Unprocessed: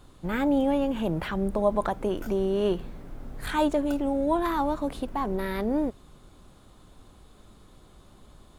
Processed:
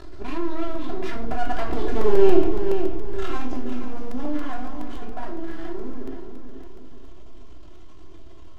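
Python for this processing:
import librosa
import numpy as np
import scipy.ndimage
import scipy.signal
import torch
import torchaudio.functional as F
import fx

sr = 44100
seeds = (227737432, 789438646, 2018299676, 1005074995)

p1 = fx.cvsd(x, sr, bps=64000)
p2 = fx.doppler_pass(p1, sr, speed_mps=54, closest_m=9.2, pass_at_s=2.17)
p3 = scipy.signal.sosfilt(scipy.signal.butter(4, 6200.0, 'lowpass', fs=sr, output='sos'), p2)
p4 = p3 + 0.72 * np.pad(p3, (int(2.9 * sr / 1000.0), 0))[:len(p3)]
p5 = np.maximum(p4, 0.0)
p6 = fx.peak_eq(p5, sr, hz=390.0, db=4.0, octaves=0.51)
p7 = p6 + fx.echo_feedback(p6, sr, ms=477, feedback_pct=28, wet_db=-13, dry=0)
p8 = fx.room_shoebox(p7, sr, seeds[0], volume_m3=600.0, walls='furnished', distance_m=3.0)
p9 = fx.buffer_crackle(p8, sr, first_s=0.75, period_s=0.14, block=128, kind='repeat')
p10 = fx.env_flatten(p9, sr, amount_pct=50)
y = F.gain(torch.from_numpy(p10), 1.0).numpy()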